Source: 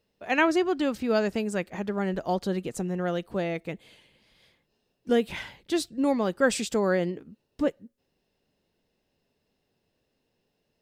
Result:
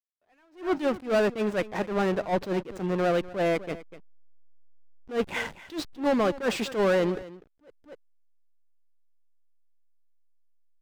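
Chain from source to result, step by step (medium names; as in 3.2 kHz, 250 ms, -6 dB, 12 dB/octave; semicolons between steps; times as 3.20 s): overdrive pedal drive 25 dB, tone 1.8 kHz, clips at -9 dBFS; hysteresis with a dead band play -22.5 dBFS; on a send: delay 248 ms -18 dB; on the sum: attacks held to a fixed rise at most 200 dB/s; trim -3.5 dB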